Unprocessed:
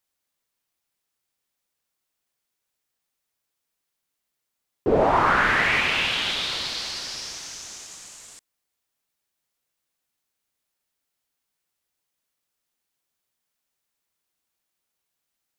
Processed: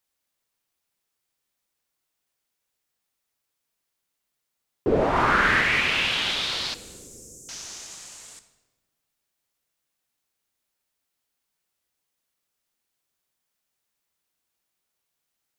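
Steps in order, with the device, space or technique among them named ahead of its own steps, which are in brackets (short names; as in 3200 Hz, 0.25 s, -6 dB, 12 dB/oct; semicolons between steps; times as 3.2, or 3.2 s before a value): 6.74–7.49 Chebyshev band-stop 500–7200 Hz, order 4; dynamic EQ 820 Hz, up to -6 dB, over -32 dBFS, Q 1.4; compressed reverb return (on a send at -9 dB: reverb RT60 1.2 s, pre-delay 12 ms + compressor, threshold -32 dBFS, peak gain reduction 15 dB); 5.11–5.61 on the sum: doubler 49 ms -3.5 dB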